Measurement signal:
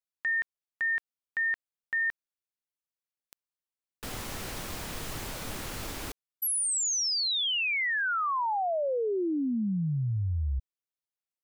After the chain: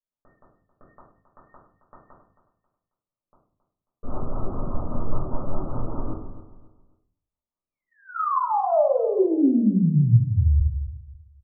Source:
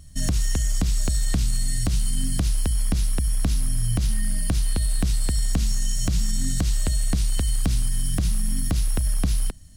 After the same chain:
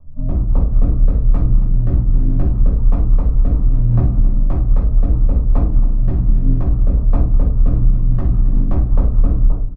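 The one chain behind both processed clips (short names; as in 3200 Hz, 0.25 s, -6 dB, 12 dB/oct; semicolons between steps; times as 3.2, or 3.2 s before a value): steep low-pass 1300 Hz 96 dB/oct; de-hum 45.32 Hz, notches 2; AGC gain up to 4 dB; hard clip -16.5 dBFS; rotary speaker horn 5 Hz; feedback echo 0.27 s, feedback 29%, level -13.5 dB; shoebox room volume 360 m³, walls furnished, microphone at 5.7 m; gain -3.5 dB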